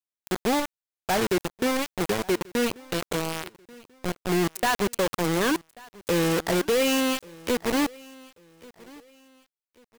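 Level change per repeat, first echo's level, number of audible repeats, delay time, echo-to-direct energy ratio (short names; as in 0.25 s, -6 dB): -10.0 dB, -23.0 dB, 2, 1.137 s, -22.5 dB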